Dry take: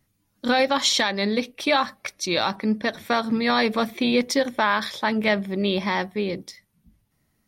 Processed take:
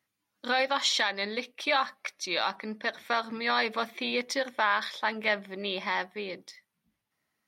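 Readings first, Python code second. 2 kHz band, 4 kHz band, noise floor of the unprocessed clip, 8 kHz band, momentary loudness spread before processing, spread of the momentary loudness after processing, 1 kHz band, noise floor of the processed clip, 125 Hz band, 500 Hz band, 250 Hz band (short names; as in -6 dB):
-3.5 dB, -5.5 dB, -71 dBFS, -8.0 dB, 7 LU, 9 LU, -5.0 dB, -83 dBFS, under -15 dB, -8.5 dB, -15.0 dB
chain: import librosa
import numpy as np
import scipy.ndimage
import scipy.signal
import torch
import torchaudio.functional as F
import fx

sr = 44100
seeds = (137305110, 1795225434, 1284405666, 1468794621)

y = fx.highpass(x, sr, hz=1300.0, slope=6)
y = fx.high_shelf(y, sr, hz=4600.0, db=-12.0)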